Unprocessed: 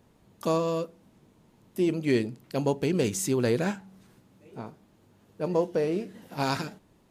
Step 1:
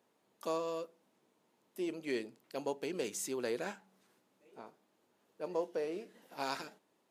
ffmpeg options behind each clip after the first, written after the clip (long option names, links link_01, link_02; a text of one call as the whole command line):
ffmpeg -i in.wav -af "highpass=370,volume=-8.5dB" out.wav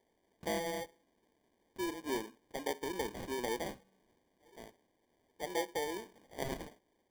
ffmpeg -i in.wav -af "highpass=frequency=200:width=0.5412,highpass=frequency=200:width=1.3066,highshelf=frequency=4000:gain=-6,acrusher=samples=33:mix=1:aa=0.000001" out.wav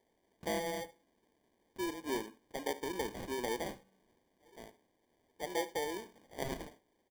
ffmpeg -i in.wav -af "aecho=1:1:74:0.119" out.wav